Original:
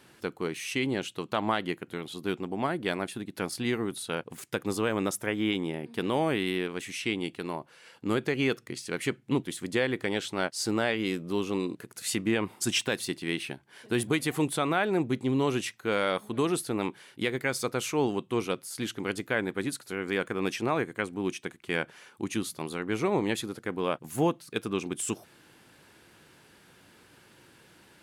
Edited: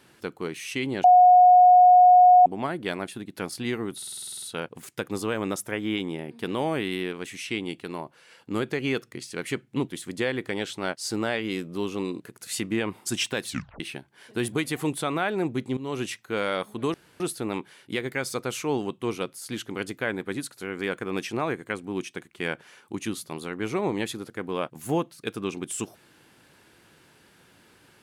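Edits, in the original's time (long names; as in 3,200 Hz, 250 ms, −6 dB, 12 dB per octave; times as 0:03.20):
0:01.04–0:02.46: beep over 725 Hz −10.5 dBFS
0:03.97: stutter 0.05 s, 10 plays
0:13.02: tape stop 0.33 s
0:15.32–0:15.59: fade in, from −16 dB
0:16.49: splice in room tone 0.26 s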